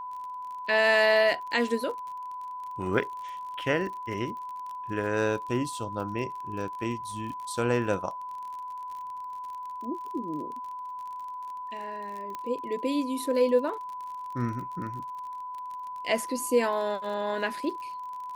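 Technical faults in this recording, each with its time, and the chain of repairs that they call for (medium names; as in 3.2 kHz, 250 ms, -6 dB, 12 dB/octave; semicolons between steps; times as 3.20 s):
crackle 40 per s -37 dBFS
whine 1 kHz -35 dBFS
12.35 s: pop -22 dBFS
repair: de-click; band-stop 1 kHz, Q 30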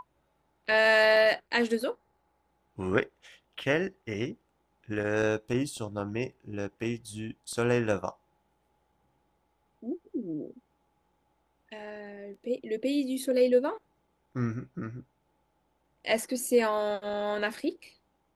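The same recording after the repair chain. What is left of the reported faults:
12.35 s: pop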